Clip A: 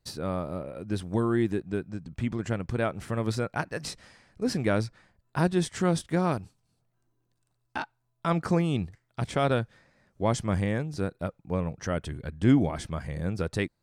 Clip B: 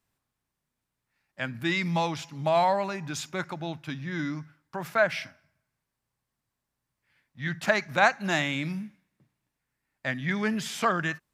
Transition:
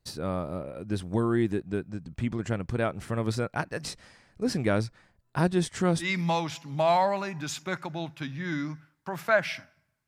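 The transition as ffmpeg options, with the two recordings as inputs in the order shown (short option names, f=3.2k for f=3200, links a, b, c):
-filter_complex "[0:a]apad=whole_dur=10.07,atrim=end=10.07,atrim=end=6.09,asetpts=PTS-STARTPTS[a];[1:a]atrim=start=1.66:end=5.74,asetpts=PTS-STARTPTS[b];[a][b]acrossfade=d=0.1:c1=tri:c2=tri"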